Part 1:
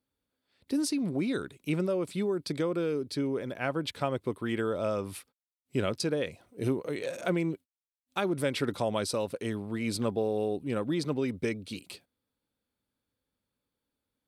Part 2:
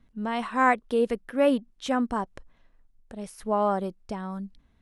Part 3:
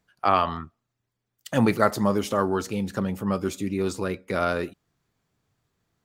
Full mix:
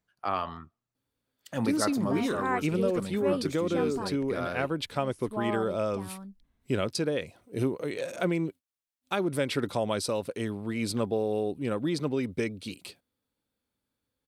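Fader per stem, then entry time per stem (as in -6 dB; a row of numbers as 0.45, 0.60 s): +1.0, -9.0, -9.5 dB; 0.95, 1.85, 0.00 s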